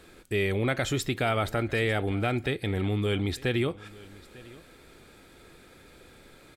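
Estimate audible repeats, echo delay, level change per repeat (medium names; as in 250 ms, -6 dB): 1, 898 ms, no regular repeats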